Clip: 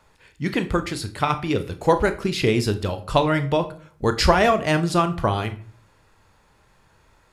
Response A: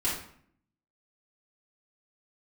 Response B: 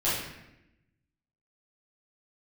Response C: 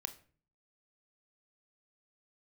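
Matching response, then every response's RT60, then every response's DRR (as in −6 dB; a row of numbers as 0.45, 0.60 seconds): C; 0.60, 0.90, 0.45 seconds; −8.5, −12.5, 9.0 decibels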